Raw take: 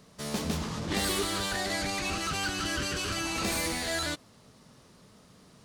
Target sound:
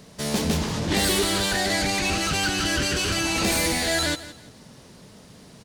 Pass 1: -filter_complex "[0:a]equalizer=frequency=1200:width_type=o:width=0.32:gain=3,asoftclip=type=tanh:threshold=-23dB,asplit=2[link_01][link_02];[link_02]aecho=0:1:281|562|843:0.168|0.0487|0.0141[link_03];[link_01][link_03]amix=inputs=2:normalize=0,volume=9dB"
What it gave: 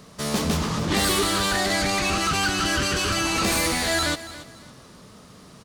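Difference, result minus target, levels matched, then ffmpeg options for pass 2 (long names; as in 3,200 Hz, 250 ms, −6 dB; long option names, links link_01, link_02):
echo 113 ms late; 1,000 Hz band +3.0 dB
-filter_complex "[0:a]equalizer=frequency=1200:width_type=o:width=0.32:gain=-7,asoftclip=type=tanh:threshold=-23dB,asplit=2[link_01][link_02];[link_02]aecho=0:1:168|336|504:0.168|0.0487|0.0141[link_03];[link_01][link_03]amix=inputs=2:normalize=0,volume=9dB"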